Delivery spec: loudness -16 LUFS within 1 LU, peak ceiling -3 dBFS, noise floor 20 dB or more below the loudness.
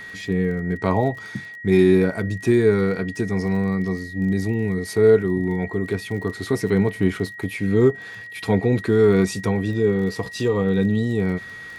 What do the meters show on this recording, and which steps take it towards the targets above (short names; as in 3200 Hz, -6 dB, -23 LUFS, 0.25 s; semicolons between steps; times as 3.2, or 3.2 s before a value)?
ticks 29/s; steady tone 1900 Hz; tone level -35 dBFS; loudness -21.0 LUFS; peak -5.0 dBFS; loudness target -16.0 LUFS
-> de-click; notch 1900 Hz, Q 30; gain +5 dB; limiter -3 dBFS